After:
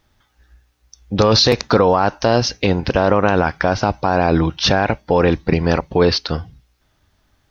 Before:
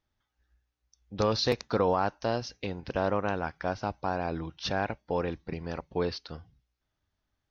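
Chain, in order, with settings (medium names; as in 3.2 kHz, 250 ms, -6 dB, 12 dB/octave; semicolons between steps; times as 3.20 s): loudness maximiser +23 dB; trim -3 dB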